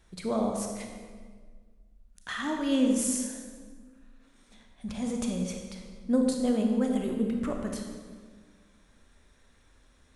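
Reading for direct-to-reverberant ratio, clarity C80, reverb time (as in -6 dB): 2.0 dB, 5.0 dB, 1.7 s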